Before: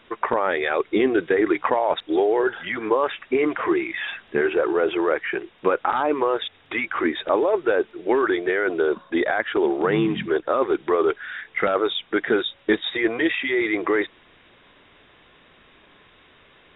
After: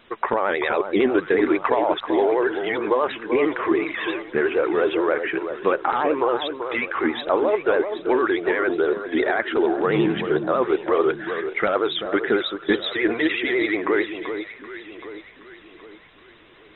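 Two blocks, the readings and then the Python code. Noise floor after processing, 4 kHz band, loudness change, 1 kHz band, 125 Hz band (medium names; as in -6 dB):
-49 dBFS, no reading, +0.5 dB, +0.5 dB, +1.0 dB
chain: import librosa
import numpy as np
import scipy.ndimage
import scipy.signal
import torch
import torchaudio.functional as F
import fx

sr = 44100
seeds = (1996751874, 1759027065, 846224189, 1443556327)

y = fx.vibrato(x, sr, rate_hz=11.0, depth_cents=88.0)
y = fx.echo_alternate(y, sr, ms=386, hz=1300.0, feedback_pct=63, wet_db=-8)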